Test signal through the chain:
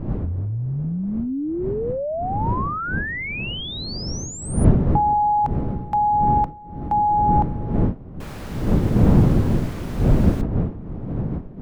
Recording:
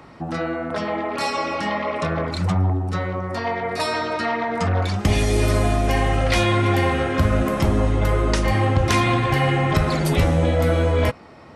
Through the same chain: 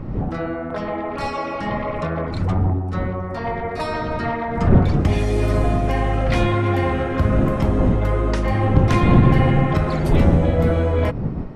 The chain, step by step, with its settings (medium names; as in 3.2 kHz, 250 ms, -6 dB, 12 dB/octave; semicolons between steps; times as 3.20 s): wind noise 190 Hz -22 dBFS; treble shelf 2.9 kHz -12 dB